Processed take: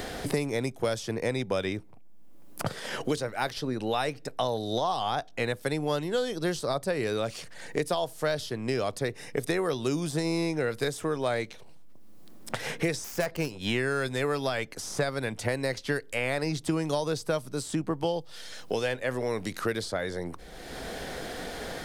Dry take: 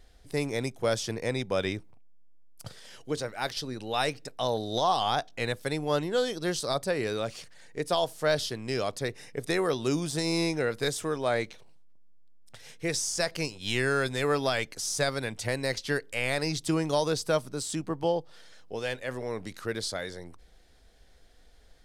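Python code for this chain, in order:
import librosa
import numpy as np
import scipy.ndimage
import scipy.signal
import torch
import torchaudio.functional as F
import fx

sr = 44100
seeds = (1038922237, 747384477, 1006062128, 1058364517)

y = fx.self_delay(x, sr, depth_ms=0.099, at=(13.04, 13.65))
y = fx.peak_eq(y, sr, hz=5200.0, db=-4.5, octaves=2.3)
y = fx.band_squash(y, sr, depth_pct=100)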